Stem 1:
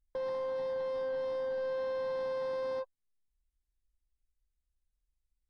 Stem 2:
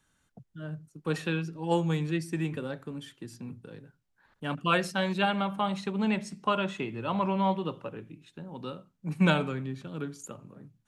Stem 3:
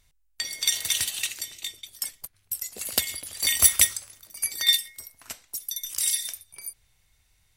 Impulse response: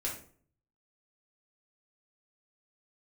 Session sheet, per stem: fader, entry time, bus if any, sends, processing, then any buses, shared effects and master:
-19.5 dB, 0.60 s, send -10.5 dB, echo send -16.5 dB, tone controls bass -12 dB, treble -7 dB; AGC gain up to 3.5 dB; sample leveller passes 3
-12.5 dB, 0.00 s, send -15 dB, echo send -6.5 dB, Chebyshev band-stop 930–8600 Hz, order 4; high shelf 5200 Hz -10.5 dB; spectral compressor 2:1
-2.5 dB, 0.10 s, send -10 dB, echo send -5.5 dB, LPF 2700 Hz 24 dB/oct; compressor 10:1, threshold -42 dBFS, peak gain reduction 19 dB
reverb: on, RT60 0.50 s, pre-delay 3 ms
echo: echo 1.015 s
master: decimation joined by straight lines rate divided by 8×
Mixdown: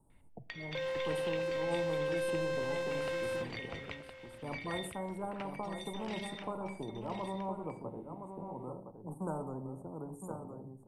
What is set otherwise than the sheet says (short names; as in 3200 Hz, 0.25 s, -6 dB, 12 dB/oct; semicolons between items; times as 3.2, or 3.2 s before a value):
stem 1 -19.5 dB -> -8.0 dB; master: missing decimation joined by straight lines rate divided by 8×